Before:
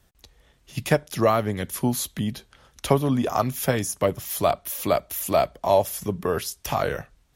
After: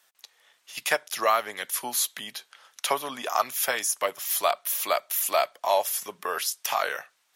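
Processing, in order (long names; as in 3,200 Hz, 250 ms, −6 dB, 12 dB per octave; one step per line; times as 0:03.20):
high-pass filter 980 Hz 12 dB per octave
level +3.5 dB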